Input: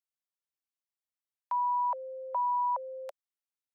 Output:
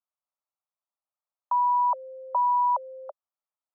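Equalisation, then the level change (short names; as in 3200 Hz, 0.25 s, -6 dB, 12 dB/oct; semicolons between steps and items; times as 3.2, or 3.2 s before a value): elliptic band-pass 570–1300 Hz; +7.0 dB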